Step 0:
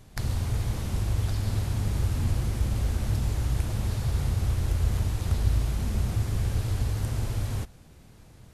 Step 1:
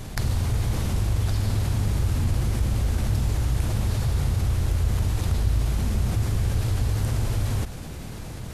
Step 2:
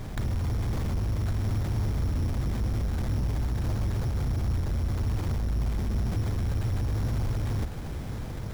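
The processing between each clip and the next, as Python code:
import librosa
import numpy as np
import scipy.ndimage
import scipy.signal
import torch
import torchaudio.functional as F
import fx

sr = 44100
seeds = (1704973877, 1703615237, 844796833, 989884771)

y1 = fx.env_flatten(x, sr, amount_pct=50)
y2 = 10.0 ** (-23.5 / 20.0) * np.tanh(y1 / 10.0 ** (-23.5 / 20.0))
y2 = y2 + 10.0 ** (-11.5 / 20.0) * np.pad(y2, (int(1091 * sr / 1000.0), 0))[:len(y2)]
y2 = np.repeat(scipy.signal.resample_poly(y2, 1, 8), 8)[:len(y2)]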